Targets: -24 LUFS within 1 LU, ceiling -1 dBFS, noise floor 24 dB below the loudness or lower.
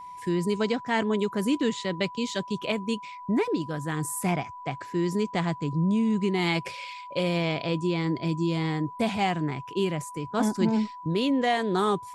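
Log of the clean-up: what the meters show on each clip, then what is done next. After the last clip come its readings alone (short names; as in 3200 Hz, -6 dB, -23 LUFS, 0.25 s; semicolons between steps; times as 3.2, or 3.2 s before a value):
steady tone 990 Hz; tone level -39 dBFS; loudness -27.5 LUFS; peak -11.0 dBFS; loudness target -24.0 LUFS
-> notch 990 Hz, Q 30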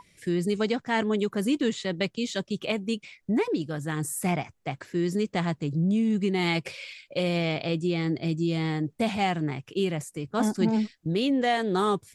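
steady tone none; loudness -27.5 LUFS; peak -11.5 dBFS; loudness target -24.0 LUFS
-> gain +3.5 dB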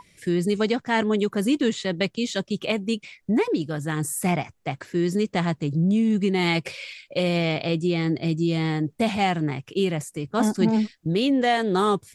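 loudness -24.0 LUFS; peak -8.0 dBFS; noise floor -62 dBFS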